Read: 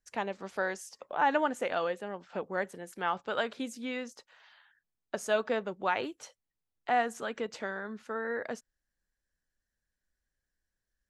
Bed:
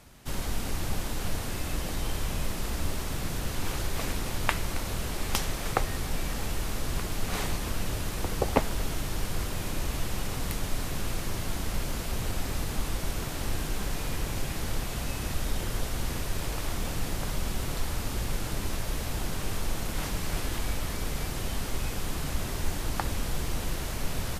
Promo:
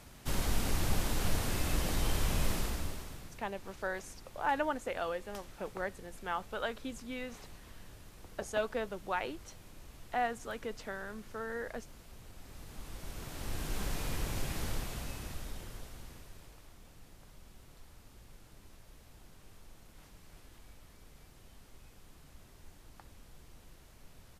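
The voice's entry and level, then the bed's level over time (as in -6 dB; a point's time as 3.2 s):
3.25 s, -5.0 dB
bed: 2.55 s -0.5 dB
3.45 s -21.5 dB
12.33 s -21.5 dB
13.8 s -4.5 dB
14.64 s -4.5 dB
16.73 s -25 dB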